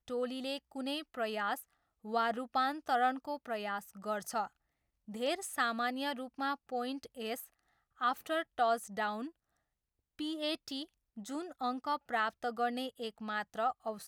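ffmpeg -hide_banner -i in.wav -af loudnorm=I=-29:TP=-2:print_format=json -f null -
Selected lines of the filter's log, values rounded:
"input_i" : "-36.6",
"input_tp" : "-19.5",
"input_lra" : "1.9",
"input_thresh" : "-46.8",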